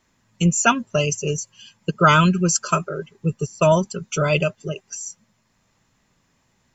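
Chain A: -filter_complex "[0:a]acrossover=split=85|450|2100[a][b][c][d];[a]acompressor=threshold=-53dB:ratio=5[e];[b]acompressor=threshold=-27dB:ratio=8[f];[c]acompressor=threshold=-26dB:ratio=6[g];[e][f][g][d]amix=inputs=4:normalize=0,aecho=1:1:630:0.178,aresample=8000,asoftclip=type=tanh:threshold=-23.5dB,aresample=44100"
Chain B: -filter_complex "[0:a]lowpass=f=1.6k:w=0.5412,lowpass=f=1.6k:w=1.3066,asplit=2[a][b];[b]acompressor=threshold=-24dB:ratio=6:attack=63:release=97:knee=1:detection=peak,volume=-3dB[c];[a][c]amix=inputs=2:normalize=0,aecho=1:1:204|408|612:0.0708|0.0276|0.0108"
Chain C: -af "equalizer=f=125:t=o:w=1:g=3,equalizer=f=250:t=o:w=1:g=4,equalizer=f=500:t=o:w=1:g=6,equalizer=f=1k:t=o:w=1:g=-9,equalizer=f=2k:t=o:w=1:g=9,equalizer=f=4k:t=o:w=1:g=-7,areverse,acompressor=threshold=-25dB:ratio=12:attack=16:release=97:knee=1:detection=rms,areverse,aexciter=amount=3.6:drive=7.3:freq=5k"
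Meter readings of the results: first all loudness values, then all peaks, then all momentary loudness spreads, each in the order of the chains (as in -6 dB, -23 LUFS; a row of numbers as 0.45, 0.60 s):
-31.5, -18.5, -23.5 LUFS; -19.0, -1.5, -4.0 dBFS; 12, 13, 14 LU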